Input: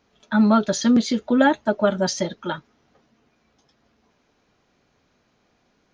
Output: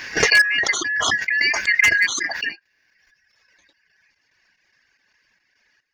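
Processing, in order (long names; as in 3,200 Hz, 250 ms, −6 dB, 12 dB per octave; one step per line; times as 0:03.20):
band-splitting scrambler in four parts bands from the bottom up 3142
reverb reduction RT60 1.2 s
0:00.58–0:01.65: downward compressor, threshold −19 dBFS, peak gain reduction 7 dB
gate pattern "..xxx..xxx" 181 BPM −12 dB
wave folding −12 dBFS
background raised ahead of every attack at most 20 dB per second
level +4 dB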